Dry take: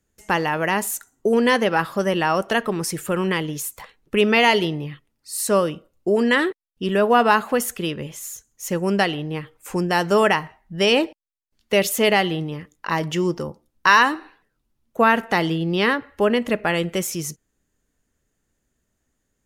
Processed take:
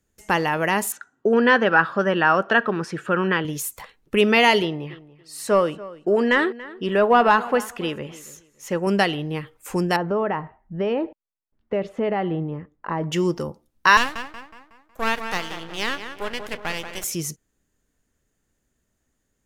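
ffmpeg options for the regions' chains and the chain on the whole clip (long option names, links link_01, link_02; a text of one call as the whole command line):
ffmpeg -i in.wav -filter_complex "[0:a]asettb=1/sr,asplit=3[link_01][link_02][link_03];[link_01]atrim=end=0.924[link_04];[link_02]atrim=start=0.92:end=3.45,asetpts=PTS-STARTPTS,afade=type=in:duration=0.004:curve=qsin,afade=type=out:start_time=2.526:duration=0.004:curve=qsin,highpass=130,lowpass=3200,equalizer=frequency=1500:width_type=o:width=0.52:gain=9.5,bandreject=frequency=2100:width=8.8[link_05];[link_03]atrim=start=3.446[link_06];[link_04][link_05]acrossfade=duration=0.004:curve1=hsin:curve2=qsin[link_07];[link_07][link_06]acrossfade=duration=0.004:curve1=qsin:curve2=hsin,asettb=1/sr,asplit=3[link_08][link_09][link_10];[link_08]atrim=end=4.624[link_11];[link_09]atrim=start=4.62:end=8.87,asetpts=PTS-STARTPTS,afade=type=in:duration=0.004:curve=qsin,afade=type=out:start_time=4.246:duration=0.004:curve=qsin,asplit=2[link_12][link_13];[link_13]highpass=frequency=720:poles=1,volume=9dB,asoftclip=type=tanh:threshold=-3.5dB[link_14];[link_12][link_14]amix=inputs=2:normalize=0,lowpass=frequency=1500:poles=1,volume=-6dB,asplit=2[link_15][link_16];[link_16]adelay=284,lowpass=frequency=3400:poles=1,volume=-18dB,asplit=2[link_17][link_18];[link_18]adelay=284,lowpass=frequency=3400:poles=1,volume=0.22[link_19];[link_15][link_17][link_19]amix=inputs=3:normalize=0,atrim=end_sample=187425[link_20];[link_10]atrim=start=8.866[link_21];[link_11][link_20]acrossfade=duration=0.004:curve1=hsin:curve2=qsin[link_22];[link_22][link_21]acrossfade=duration=0.004:curve1=qsin:curve2=hsin,asettb=1/sr,asplit=3[link_23][link_24][link_25];[link_23]atrim=end=9.964[link_26];[link_24]atrim=start=9.96:end=13.12,asetpts=PTS-STARTPTS,afade=type=in:duration=0.004:curve=qsin,afade=type=out:start_time=3.156:duration=0.004:curve=qsin,lowpass=1200,acompressor=threshold=-20dB:ratio=3:attack=3.2:release=140:knee=1:detection=peak[link_27];[link_25]atrim=start=13.116[link_28];[link_26][link_27]acrossfade=duration=0.004:curve1=hsin:curve2=qsin[link_29];[link_29][link_28]acrossfade=duration=0.004:curve1=qsin:curve2=hsin,asettb=1/sr,asplit=3[link_30][link_31][link_32];[link_30]atrim=end=13.974[link_33];[link_31]atrim=start=13.97:end=17.04,asetpts=PTS-STARTPTS,afade=type=in:duration=0.004:curve=qsin,afade=type=out:start_time=3.066:duration=0.004:curve=qsin,highpass=frequency=1300:poles=1,asplit=2[link_34][link_35];[link_35]adelay=184,lowpass=frequency=1800:poles=1,volume=-7dB,asplit=2[link_36][link_37];[link_37]adelay=184,lowpass=frequency=1800:poles=1,volume=0.54,asplit=2[link_38][link_39];[link_39]adelay=184,lowpass=frequency=1800:poles=1,volume=0.54,asplit=2[link_40][link_41];[link_41]adelay=184,lowpass=frequency=1800:poles=1,volume=0.54,asplit=2[link_42][link_43];[link_43]adelay=184,lowpass=frequency=1800:poles=1,volume=0.54,asplit=2[link_44][link_45];[link_45]adelay=184,lowpass=frequency=1800:poles=1,volume=0.54,asplit=2[link_46][link_47];[link_47]adelay=184,lowpass=frequency=1800:poles=1,volume=0.54[link_48];[link_34][link_36][link_38][link_40][link_42][link_44][link_46][link_48]amix=inputs=8:normalize=0,atrim=end_sample=135387,aeval=exprs='max(val(0),0)':channel_layout=same[link_49];[link_32]atrim=start=17.036[link_50];[link_33][link_49]acrossfade=duration=0.004:curve1=hsin:curve2=qsin[link_51];[link_51][link_50]acrossfade=duration=0.004:curve1=qsin:curve2=hsin" out.wav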